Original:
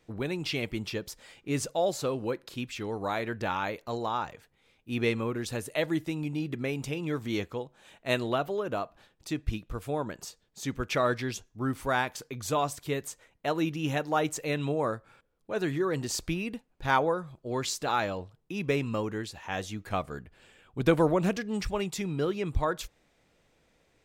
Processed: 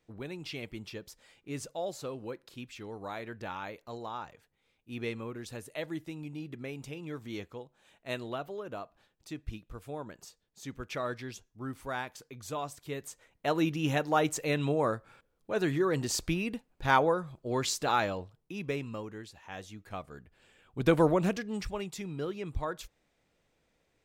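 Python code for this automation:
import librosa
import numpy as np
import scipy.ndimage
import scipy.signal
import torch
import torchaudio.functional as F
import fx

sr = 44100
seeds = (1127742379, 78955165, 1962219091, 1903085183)

y = fx.gain(x, sr, db=fx.line((12.79, -8.5), (13.54, 0.5), (17.95, 0.5), (19.09, -9.5), (20.07, -9.5), (21.04, 0.0), (21.88, -6.5)))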